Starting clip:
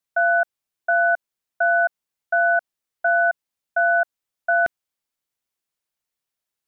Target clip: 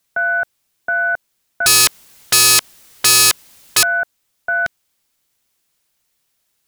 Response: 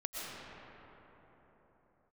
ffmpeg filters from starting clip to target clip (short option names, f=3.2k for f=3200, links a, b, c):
-filter_complex "[0:a]asettb=1/sr,asplit=3[a][b][c];[a]atrim=end=1.664[d];[b]atrim=start=1.66:end=3.83,asetpts=PTS-STARTPTS,afade=t=in:d=0.004:c=qsin,afade=t=out:st=2.166:d=0.004:c=qsin,aeval=exprs='0.266*sin(PI/2*7.08*val(0)/0.266)':c=same[e];[c]atrim=start=3.826[f];[d][e]acrossfade=d=0.004:c1=hsin:c2=qsin[g];[g][f]acrossfade=d=0.004:c1=qsin:c2=hsin,apsyclip=26.5dB,equalizer=f=800:w=0.36:g=-4,volume=-9dB"